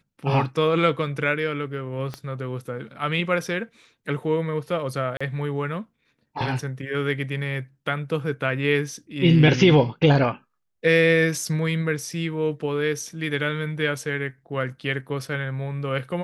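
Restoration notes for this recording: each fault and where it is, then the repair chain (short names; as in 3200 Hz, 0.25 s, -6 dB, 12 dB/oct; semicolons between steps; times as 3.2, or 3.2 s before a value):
2.14 pop -18 dBFS
5.17–5.21 gap 35 ms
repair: de-click; interpolate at 5.17, 35 ms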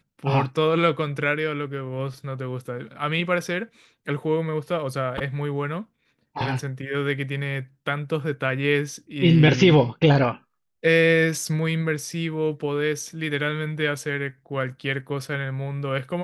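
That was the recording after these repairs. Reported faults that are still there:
2.14 pop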